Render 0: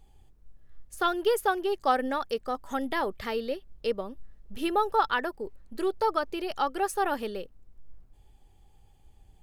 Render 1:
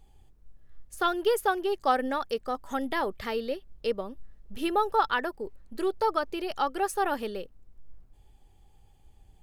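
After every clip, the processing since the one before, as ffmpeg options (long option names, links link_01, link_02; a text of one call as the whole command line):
ffmpeg -i in.wav -af anull out.wav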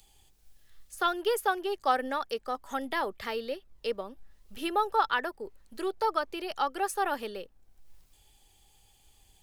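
ffmpeg -i in.wav -filter_complex "[0:a]lowshelf=frequency=390:gain=-8,acrossover=split=110|450|2700[link_01][link_02][link_03][link_04];[link_01]acrusher=samples=32:mix=1:aa=0.000001:lfo=1:lforange=51.2:lforate=0.55[link_05];[link_04]acompressor=mode=upward:threshold=-54dB:ratio=2.5[link_06];[link_05][link_02][link_03][link_06]amix=inputs=4:normalize=0" out.wav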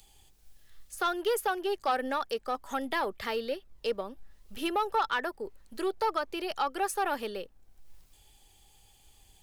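ffmpeg -i in.wav -filter_complex "[0:a]asplit=2[link_01][link_02];[link_02]alimiter=limit=-21dB:level=0:latency=1:release=204,volume=-1dB[link_03];[link_01][link_03]amix=inputs=2:normalize=0,asoftclip=type=tanh:threshold=-16dB,volume=-3.5dB" out.wav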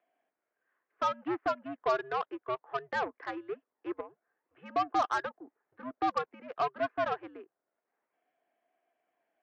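ffmpeg -i in.wav -af "highpass=frequency=480:width_type=q:width=0.5412,highpass=frequency=480:width_type=q:width=1.307,lowpass=frequency=2100:width_type=q:width=0.5176,lowpass=frequency=2100:width_type=q:width=0.7071,lowpass=frequency=2100:width_type=q:width=1.932,afreqshift=-120,aeval=exprs='0.126*(cos(1*acos(clip(val(0)/0.126,-1,1)))-cos(1*PI/2))+0.01*(cos(7*acos(clip(val(0)/0.126,-1,1)))-cos(7*PI/2))':channel_layout=same" -ar 48000 -c:a libvorbis -b:a 128k out.ogg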